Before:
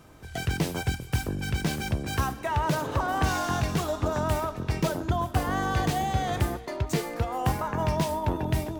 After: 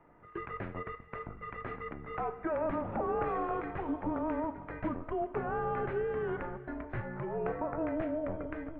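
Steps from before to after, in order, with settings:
hum removal 99 Hz, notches 30
single-sideband voice off tune −330 Hz 400–2,300 Hz
level −3.5 dB

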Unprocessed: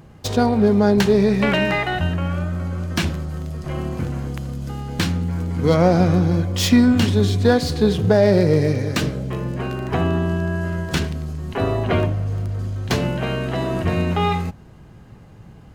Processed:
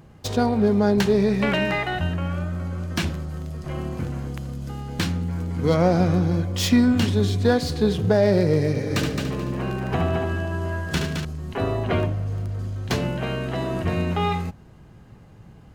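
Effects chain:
0:08.69–0:11.25: echo machine with several playback heads 72 ms, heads first and third, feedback 42%, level −6 dB
level −3.5 dB

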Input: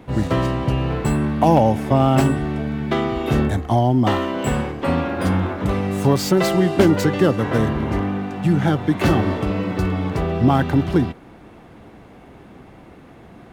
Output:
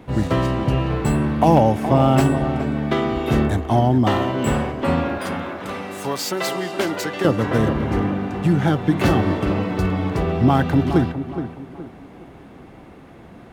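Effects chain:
0:05.18–0:07.25: high-pass filter 940 Hz 6 dB per octave
on a send: tape delay 418 ms, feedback 41%, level −8 dB, low-pass 1,700 Hz

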